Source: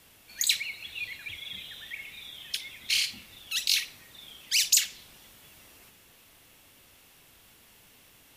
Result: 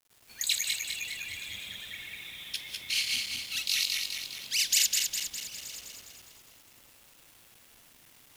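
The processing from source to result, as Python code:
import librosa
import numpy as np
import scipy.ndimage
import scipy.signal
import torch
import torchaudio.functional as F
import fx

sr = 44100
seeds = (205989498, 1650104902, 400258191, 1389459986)

y = fx.reverse_delay_fb(x, sr, ms=102, feedback_pct=74, wet_db=-0.5)
y = fx.quant_dither(y, sr, seeds[0], bits=8, dither='none')
y = y + 10.0 ** (-19.5 / 20.0) * np.pad(y, (int(927 * sr / 1000.0), 0))[:len(y)]
y = y * librosa.db_to_amplitude(-5.0)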